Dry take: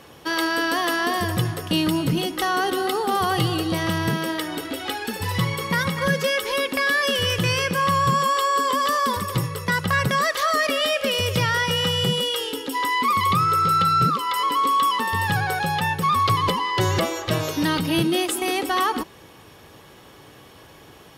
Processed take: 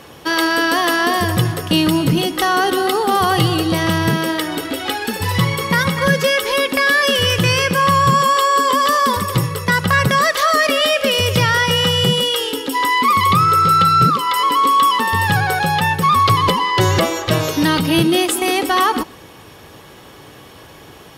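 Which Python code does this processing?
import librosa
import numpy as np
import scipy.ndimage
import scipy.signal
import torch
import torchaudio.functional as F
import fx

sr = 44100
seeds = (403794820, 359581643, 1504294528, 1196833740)

y = x + 10.0 ** (-23.5 / 20.0) * np.pad(x, (int(126 * sr / 1000.0), 0))[:len(x)]
y = F.gain(torch.from_numpy(y), 6.5).numpy()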